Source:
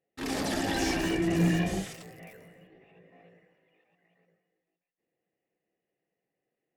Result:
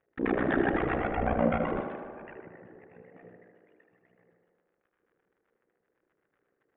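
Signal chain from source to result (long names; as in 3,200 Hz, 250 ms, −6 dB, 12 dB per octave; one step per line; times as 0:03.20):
hum removal 54.54 Hz, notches 37
reverb reduction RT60 1.1 s
in parallel at +0.5 dB: brickwall limiter −26.5 dBFS, peak gain reduction 8 dB
on the sum: amplitude modulation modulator 61 Hz, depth 95%
surface crackle 99 per second −60 dBFS
0:00.76–0:02.36: ring modulation 400 Hz
auto-filter low-pass square 7.9 Hz 430–1,600 Hz
on a send: tape delay 76 ms, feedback 84%, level −5.5 dB, low-pass 2,700 Hz
on the sum: downsampling to 8,000 Hz
level +2.5 dB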